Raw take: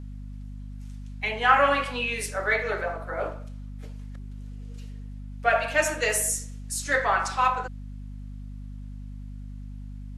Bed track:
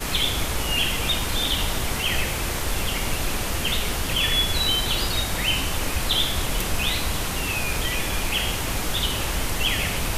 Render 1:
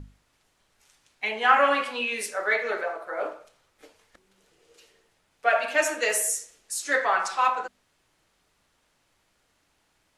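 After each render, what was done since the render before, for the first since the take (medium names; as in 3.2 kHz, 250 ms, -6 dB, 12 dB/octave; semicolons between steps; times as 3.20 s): hum notches 50/100/150/200/250 Hz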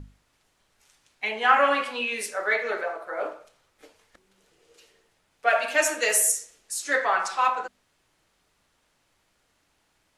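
5.47–6.32 s: treble shelf 4.3 kHz +6 dB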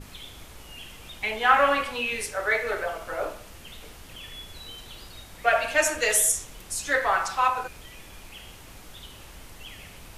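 add bed track -20 dB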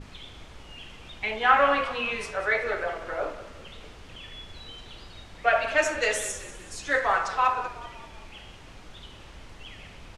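distance through air 97 m; frequency-shifting echo 190 ms, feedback 52%, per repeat -36 Hz, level -15 dB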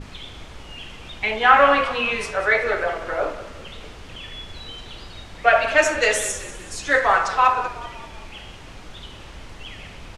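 trim +6.5 dB; peak limiter -1 dBFS, peak gain reduction 1 dB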